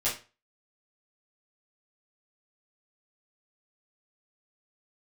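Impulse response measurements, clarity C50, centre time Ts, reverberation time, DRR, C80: 7.5 dB, 29 ms, 0.30 s, -11.0 dB, 14.0 dB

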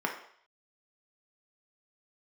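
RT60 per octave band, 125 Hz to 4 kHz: 0.40, 0.45, 0.55, 0.65, 0.60, 0.65 s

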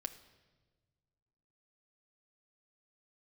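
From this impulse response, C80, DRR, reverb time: 14.5 dB, 6.0 dB, 1.3 s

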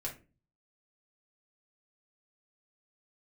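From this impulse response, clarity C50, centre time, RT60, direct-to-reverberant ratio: 10.5 dB, 17 ms, 0.30 s, -3.5 dB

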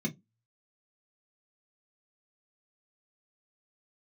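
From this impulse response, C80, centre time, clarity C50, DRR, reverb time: 32.5 dB, 12 ms, 21.5 dB, -0.5 dB, 0.15 s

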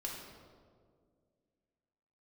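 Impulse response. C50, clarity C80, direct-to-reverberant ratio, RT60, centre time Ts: 1.5 dB, 3.5 dB, -3.5 dB, 2.0 s, 76 ms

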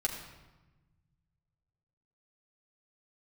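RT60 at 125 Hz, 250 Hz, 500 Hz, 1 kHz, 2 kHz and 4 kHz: 2.7, 2.0, 1.1, 1.1, 1.0, 0.85 s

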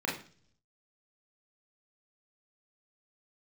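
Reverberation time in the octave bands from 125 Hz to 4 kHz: 0.95, 0.70, 0.50, 0.40, 0.40, 0.55 s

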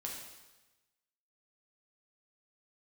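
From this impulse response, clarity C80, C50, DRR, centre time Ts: 5.0 dB, 2.5 dB, -2.0 dB, 53 ms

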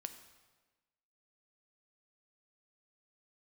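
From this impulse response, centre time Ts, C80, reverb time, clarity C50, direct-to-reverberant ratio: 13 ms, 12.0 dB, 1.3 s, 10.5 dB, 8.0 dB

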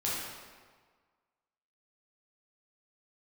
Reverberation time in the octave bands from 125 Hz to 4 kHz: 1.5, 1.5, 1.6, 1.6, 1.3, 1.1 s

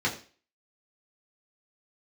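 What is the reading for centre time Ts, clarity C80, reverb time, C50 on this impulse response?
17 ms, 14.5 dB, 0.40 s, 11.5 dB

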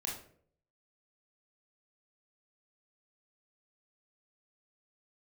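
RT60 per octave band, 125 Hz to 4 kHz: 0.75, 0.65, 0.70, 0.45, 0.45, 0.35 s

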